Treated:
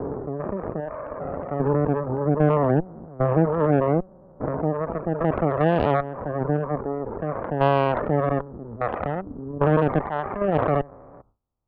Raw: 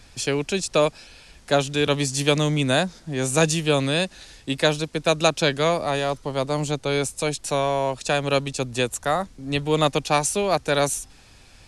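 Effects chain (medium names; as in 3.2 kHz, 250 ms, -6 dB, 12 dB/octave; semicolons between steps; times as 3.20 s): spectrogram pixelated in time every 400 ms; gate with hold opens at -29 dBFS; steep low-pass 1.3 kHz 96 dB/octave; Chebyshev shaper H 2 -12 dB, 6 -20 dB, 7 -27 dB, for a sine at -12 dBFS; reverb removal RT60 1.9 s; trim +7 dB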